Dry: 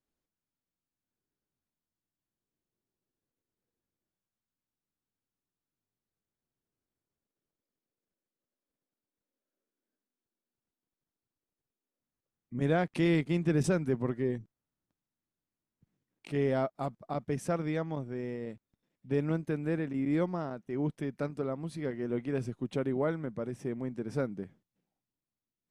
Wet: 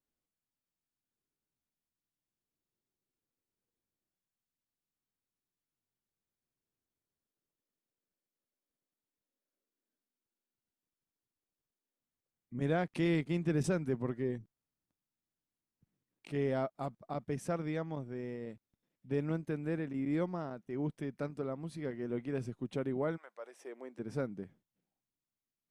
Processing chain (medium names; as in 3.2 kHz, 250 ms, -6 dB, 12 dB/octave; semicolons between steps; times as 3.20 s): 23.16–23.98 s: high-pass 780 Hz -> 310 Hz 24 dB/octave; trim -4 dB